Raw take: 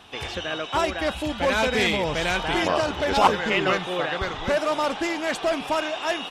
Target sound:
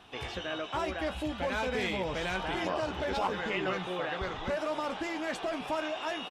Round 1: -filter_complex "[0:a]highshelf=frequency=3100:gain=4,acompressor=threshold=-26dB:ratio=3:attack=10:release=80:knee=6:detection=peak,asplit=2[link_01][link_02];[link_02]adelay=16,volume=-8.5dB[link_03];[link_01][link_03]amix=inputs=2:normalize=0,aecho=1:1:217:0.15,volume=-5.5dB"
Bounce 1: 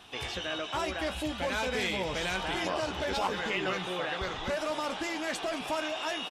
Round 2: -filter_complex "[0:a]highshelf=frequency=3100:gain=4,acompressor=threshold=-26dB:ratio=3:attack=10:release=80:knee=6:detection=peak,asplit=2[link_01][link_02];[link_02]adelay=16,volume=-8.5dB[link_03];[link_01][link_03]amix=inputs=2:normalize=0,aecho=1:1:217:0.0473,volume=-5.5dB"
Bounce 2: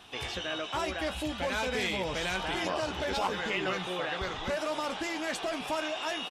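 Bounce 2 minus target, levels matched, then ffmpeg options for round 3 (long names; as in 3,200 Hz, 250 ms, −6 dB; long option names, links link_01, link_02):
8,000 Hz band +6.0 dB
-filter_complex "[0:a]highshelf=frequency=3100:gain=-5.5,acompressor=threshold=-26dB:ratio=3:attack=10:release=80:knee=6:detection=peak,asplit=2[link_01][link_02];[link_02]adelay=16,volume=-8.5dB[link_03];[link_01][link_03]amix=inputs=2:normalize=0,aecho=1:1:217:0.0473,volume=-5.5dB"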